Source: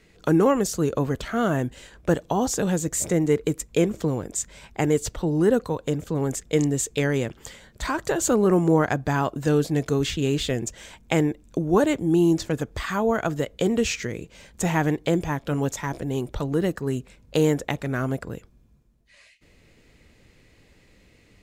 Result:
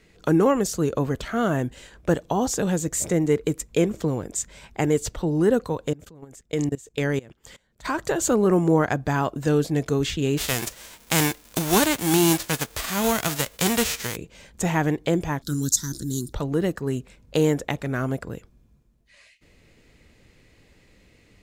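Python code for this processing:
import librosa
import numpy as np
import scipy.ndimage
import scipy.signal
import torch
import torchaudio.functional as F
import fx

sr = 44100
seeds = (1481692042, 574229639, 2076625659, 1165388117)

y = fx.level_steps(x, sr, step_db=23, at=(5.91, 7.84), fade=0.02)
y = fx.envelope_flatten(y, sr, power=0.3, at=(10.37, 14.15), fade=0.02)
y = fx.curve_eq(y, sr, hz=(320.0, 560.0, 810.0, 1500.0, 2500.0, 4000.0), db=(0, -22, -25, -4, -27, 14), at=(15.42, 16.33))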